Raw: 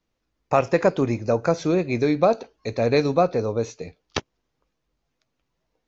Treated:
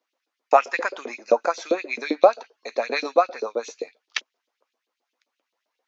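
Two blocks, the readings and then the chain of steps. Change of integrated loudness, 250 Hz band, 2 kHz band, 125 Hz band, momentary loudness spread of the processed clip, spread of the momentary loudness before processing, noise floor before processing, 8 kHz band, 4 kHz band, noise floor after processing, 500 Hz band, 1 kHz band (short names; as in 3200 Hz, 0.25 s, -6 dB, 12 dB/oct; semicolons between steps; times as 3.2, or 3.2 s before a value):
-1.0 dB, -10.0 dB, +3.5 dB, under -30 dB, 13 LU, 12 LU, -77 dBFS, n/a, +1.0 dB, -83 dBFS, -1.0 dB, +3.0 dB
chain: LFO high-pass saw up 7.6 Hz 410–4000 Hz; resonant low shelf 180 Hz -9.5 dB, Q 3; gain -1 dB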